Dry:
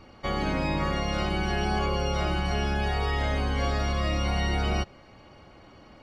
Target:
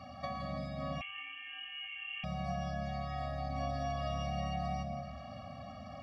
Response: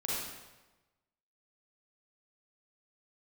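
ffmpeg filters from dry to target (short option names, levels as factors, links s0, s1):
-filter_complex "[0:a]highpass=f=76:w=0.5412,highpass=f=76:w=1.3066,equalizer=f=820:t=o:w=0.69:g=11,acompressor=threshold=0.0141:ratio=12,asplit=2[s0][s1];[1:a]atrim=start_sample=2205,lowshelf=f=380:g=10.5,adelay=111[s2];[s1][s2]afir=irnorm=-1:irlink=0,volume=0.282[s3];[s0][s3]amix=inputs=2:normalize=0,asettb=1/sr,asplit=3[s4][s5][s6];[s4]atrim=end=1.014[s7];[s5]atrim=start=1.01:end=2.24,asetpts=PTS-STARTPTS,afade=t=in:d=0.004:c=qsin,afade=t=out:st=1.226:d=0.004:c=qsin,lowpass=f=2800:t=q:w=0.5098,lowpass=f=2800:t=q:w=0.6013,lowpass=f=2800:t=q:w=0.9,lowpass=f=2800:t=q:w=2.563,afreqshift=-3300[s8];[s6]atrim=start=2.236[s9];[s7][s8]acrossfade=d=0.004:c1=hsin:c2=qsin[s10];[s10][s9]acrossfade=d=0.004:c1=qsin:c2=hsin,afftfilt=real='re*eq(mod(floor(b*sr/1024/270),2),0)':imag='im*eq(mod(floor(b*sr/1024/270),2),0)':win_size=1024:overlap=0.75,volume=1.19"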